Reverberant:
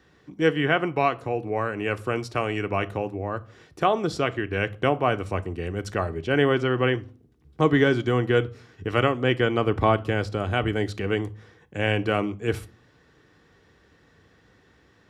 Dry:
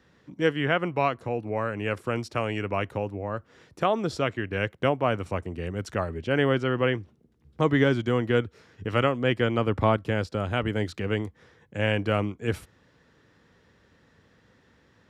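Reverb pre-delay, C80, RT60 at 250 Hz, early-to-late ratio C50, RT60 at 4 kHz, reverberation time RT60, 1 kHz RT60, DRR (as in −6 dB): 3 ms, 27.0 dB, 0.65 s, 22.0 dB, 0.30 s, 0.40 s, 0.40 s, 9.0 dB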